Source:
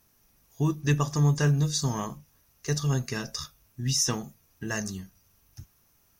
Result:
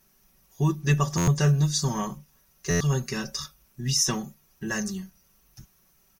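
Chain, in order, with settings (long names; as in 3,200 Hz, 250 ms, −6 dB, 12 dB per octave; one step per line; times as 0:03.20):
comb filter 5.3 ms, depth 78%
buffer that repeats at 0:01.17/0:02.70, samples 512, times 8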